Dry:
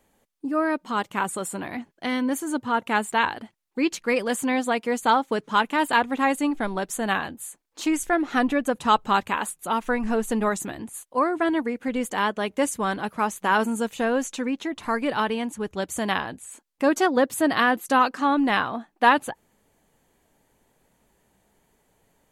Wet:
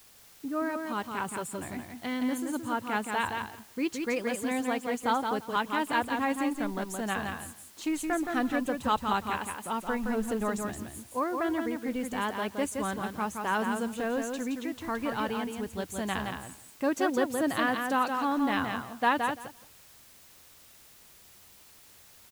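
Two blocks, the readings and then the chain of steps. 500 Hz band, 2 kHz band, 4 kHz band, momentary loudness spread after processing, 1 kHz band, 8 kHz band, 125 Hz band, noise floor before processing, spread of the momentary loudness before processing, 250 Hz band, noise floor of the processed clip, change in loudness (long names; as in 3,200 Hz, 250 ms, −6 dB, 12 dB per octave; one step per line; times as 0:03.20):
−6.5 dB, −7.0 dB, −7.0 dB, 8 LU, −7.0 dB, −7.0 dB, −3.0 dB, −68 dBFS, 10 LU, −5.5 dB, −55 dBFS, −6.5 dB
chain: parametric band 83 Hz +14.5 dB 1.3 octaves
bit-depth reduction 8 bits, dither triangular
on a send: repeating echo 170 ms, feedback 15%, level −5 dB
on the sum: level −8.5 dB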